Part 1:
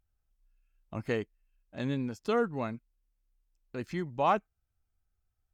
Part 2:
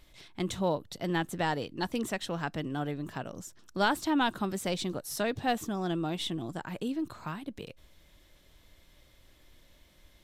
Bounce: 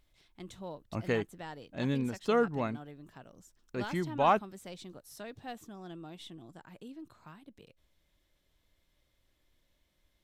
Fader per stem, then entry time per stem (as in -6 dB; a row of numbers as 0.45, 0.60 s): +1.0, -14.0 dB; 0.00, 0.00 s